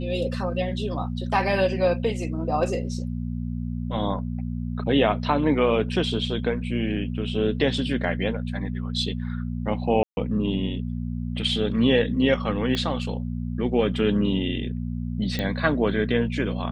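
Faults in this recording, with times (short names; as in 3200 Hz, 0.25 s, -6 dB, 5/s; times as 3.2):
hum 60 Hz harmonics 4 -29 dBFS
10.03–10.17 gap 0.141 s
12.75 pop -14 dBFS
15.39 pop -14 dBFS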